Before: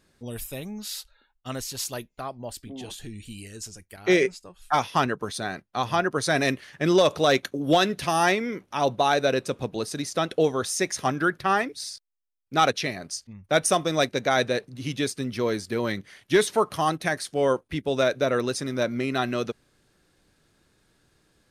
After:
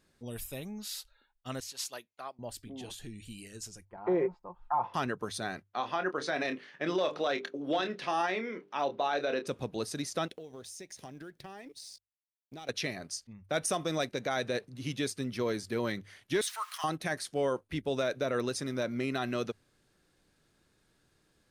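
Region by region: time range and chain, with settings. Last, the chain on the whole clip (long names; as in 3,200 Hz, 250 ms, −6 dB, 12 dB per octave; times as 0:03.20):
0:01.60–0:02.39: meter weighting curve A + expander for the loud parts, over −43 dBFS
0:03.85–0:04.94: low-pass with resonance 940 Hz, resonance Q 5.8 + comb filter 5.7 ms, depth 47%
0:05.63–0:09.47: band-pass filter 260–3,900 Hz + mains-hum notches 50/100/150/200/250/300/350/400/450/500 Hz + double-tracking delay 27 ms −10 dB
0:10.28–0:12.69: mu-law and A-law mismatch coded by A + parametric band 1,300 Hz −11.5 dB 0.76 octaves + downward compressor 8 to 1, threshold −37 dBFS
0:16.41–0:16.84: converter with a step at zero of −38.5 dBFS + high-pass filter 1,200 Hz 24 dB per octave
whole clip: mains-hum notches 50/100 Hz; brickwall limiter −15.5 dBFS; level −5.5 dB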